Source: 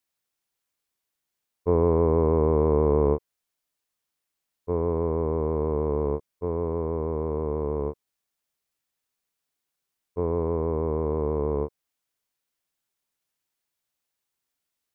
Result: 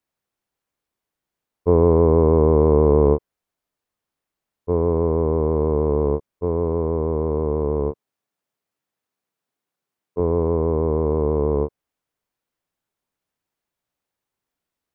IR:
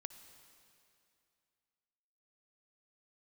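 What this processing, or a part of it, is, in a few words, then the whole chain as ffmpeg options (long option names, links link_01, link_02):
through cloth: -filter_complex "[0:a]asettb=1/sr,asplit=3[link_01][link_02][link_03];[link_01]atrim=end=7.914[link_04];[link_02]atrim=start=7.91:end=10.2,asetpts=PTS-STARTPTS,afade=type=in:duration=0.004:curve=qsin,afade=type=out:start_time=2.286:duration=0.004:curve=qsin,highpass=120[link_05];[link_03]atrim=start=10.196[link_06];[link_04][link_05]acrossfade=duration=0.004:curve1=hsin:curve2=qsin[link_07];[link_07][link_06]acrossfade=duration=0.004:curve1=qsin:curve2=hsin,highshelf=frequency=2000:gain=-12,volume=6.5dB"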